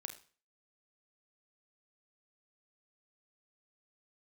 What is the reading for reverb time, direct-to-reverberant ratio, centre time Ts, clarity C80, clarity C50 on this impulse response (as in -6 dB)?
0.40 s, 6.0 dB, 11 ms, 15.5 dB, 9.5 dB